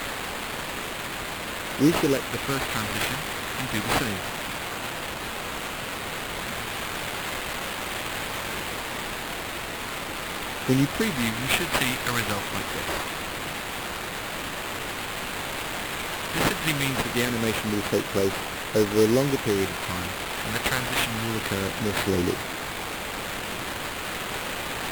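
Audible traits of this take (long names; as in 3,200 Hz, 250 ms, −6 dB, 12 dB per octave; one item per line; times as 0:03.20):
a quantiser's noise floor 6 bits, dither triangular
phaser sweep stages 2, 0.23 Hz, lowest notch 360–2,600 Hz
aliases and images of a low sample rate 5,700 Hz, jitter 20%
AAC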